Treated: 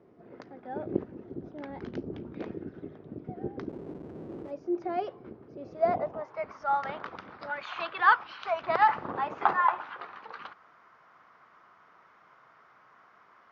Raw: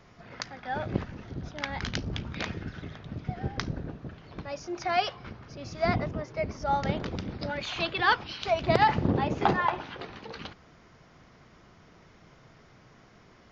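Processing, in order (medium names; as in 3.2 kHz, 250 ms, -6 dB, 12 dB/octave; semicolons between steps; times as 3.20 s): 3.69–4.51 s: Schmitt trigger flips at -48.5 dBFS; band-pass sweep 360 Hz -> 1.2 kHz, 5.52–6.48 s; trim +6 dB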